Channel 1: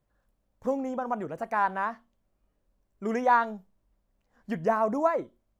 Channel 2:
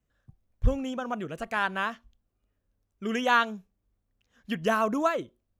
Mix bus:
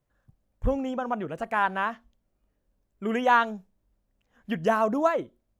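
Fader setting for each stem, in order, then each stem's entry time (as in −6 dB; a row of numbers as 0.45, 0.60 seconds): −2.5, −5.0 decibels; 0.00, 0.00 seconds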